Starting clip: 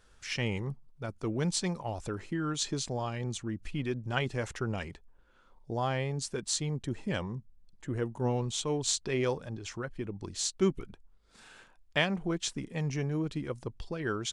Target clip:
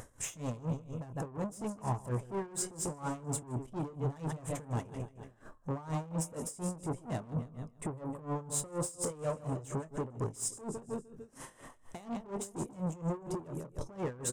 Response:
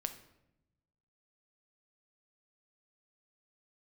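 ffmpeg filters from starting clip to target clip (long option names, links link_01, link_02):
-filter_complex "[0:a]equalizer=frequency=230:width=1.3:gain=9.5,bandreject=frequency=3700:width=7.5,aecho=1:1:149|298|447|596:0.237|0.104|0.0459|0.0202,asetrate=52444,aresample=44100,atempo=0.840896,asplit=2[link_01][link_02];[link_02]acompressor=threshold=-34dB:ratio=6,volume=-1dB[link_03];[link_01][link_03]amix=inputs=2:normalize=0,alimiter=limit=-22dB:level=0:latency=1:release=113,asplit=2[link_04][link_05];[link_05]adelay=25,volume=-10.5dB[link_06];[link_04][link_06]amix=inputs=2:normalize=0,asoftclip=type=tanh:threshold=-33.5dB,equalizer=frequency=125:width_type=o:width=1:gain=11,equalizer=frequency=250:width_type=o:width=1:gain=-4,equalizer=frequency=500:width_type=o:width=1:gain=5,equalizer=frequency=1000:width_type=o:width=1:gain=8,equalizer=frequency=2000:width_type=o:width=1:gain=-4,equalizer=frequency=4000:width_type=o:width=1:gain=-9,equalizer=frequency=8000:width_type=o:width=1:gain=11,acompressor=mode=upward:threshold=-42dB:ratio=2.5,aeval=exprs='val(0)*pow(10,-19*(0.5-0.5*cos(2*PI*4.2*n/s))/20)':channel_layout=same"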